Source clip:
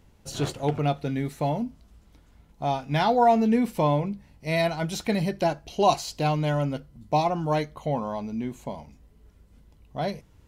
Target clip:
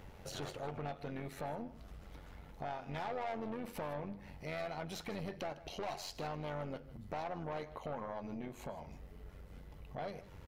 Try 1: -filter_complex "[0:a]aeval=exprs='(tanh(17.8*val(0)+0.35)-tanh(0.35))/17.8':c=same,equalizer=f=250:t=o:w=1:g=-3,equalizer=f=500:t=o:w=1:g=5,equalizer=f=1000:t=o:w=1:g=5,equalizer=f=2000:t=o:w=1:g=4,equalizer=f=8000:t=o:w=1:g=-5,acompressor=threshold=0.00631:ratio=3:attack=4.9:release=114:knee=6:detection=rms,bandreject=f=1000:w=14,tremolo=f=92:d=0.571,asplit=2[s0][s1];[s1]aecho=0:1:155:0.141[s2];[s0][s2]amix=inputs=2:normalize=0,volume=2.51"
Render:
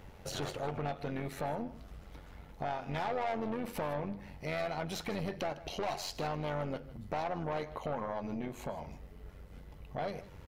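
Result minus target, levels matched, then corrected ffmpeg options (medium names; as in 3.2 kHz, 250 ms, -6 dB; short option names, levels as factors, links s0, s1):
compression: peak gain reduction -5.5 dB
-filter_complex "[0:a]aeval=exprs='(tanh(17.8*val(0)+0.35)-tanh(0.35))/17.8':c=same,equalizer=f=250:t=o:w=1:g=-3,equalizer=f=500:t=o:w=1:g=5,equalizer=f=1000:t=o:w=1:g=5,equalizer=f=2000:t=o:w=1:g=4,equalizer=f=8000:t=o:w=1:g=-5,acompressor=threshold=0.00251:ratio=3:attack=4.9:release=114:knee=6:detection=rms,bandreject=f=1000:w=14,tremolo=f=92:d=0.571,asplit=2[s0][s1];[s1]aecho=0:1:155:0.141[s2];[s0][s2]amix=inputs=2:normalize=0,volume=2.51"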